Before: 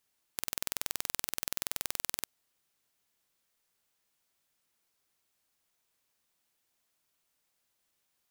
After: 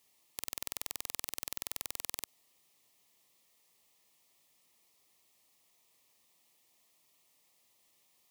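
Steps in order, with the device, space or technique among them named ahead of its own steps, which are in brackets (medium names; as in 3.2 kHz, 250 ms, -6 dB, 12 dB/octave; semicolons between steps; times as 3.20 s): PA system with an anti-feedback notch (high-pass 120 Hz 6 dB/octave; Butterworth band-stop 1.5 kHz, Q 3; peak limiter -17 dBFS, peak gain reduction 12 dB); trim +8 dB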